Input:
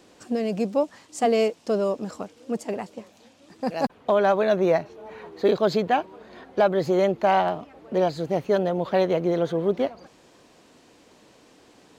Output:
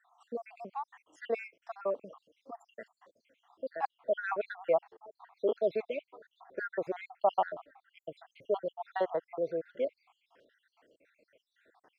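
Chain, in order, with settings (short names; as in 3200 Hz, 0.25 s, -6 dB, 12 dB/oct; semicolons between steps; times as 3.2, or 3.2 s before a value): random spectral dropouts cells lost 71%; three-band isolator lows -18 dB, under 440 Hz, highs -21 dB, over 2600 Hz; gain -3 dB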